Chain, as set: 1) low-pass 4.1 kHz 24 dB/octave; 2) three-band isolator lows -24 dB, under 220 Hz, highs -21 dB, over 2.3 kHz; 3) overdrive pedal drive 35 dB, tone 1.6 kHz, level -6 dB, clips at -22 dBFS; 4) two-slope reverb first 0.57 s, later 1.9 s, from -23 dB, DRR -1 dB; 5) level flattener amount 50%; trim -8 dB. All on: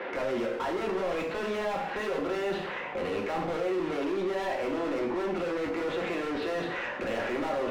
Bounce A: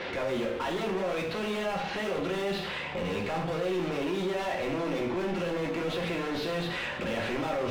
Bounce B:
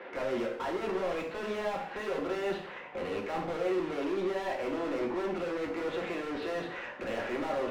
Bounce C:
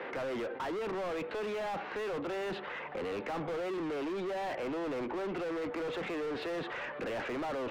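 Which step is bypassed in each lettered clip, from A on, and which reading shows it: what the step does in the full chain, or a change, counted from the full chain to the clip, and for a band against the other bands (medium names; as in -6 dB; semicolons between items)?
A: 2, 125 Hz band +6.5 dB; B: 5, momentary loudness spread change +3 LU; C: 4, crest factor change -5.5 dB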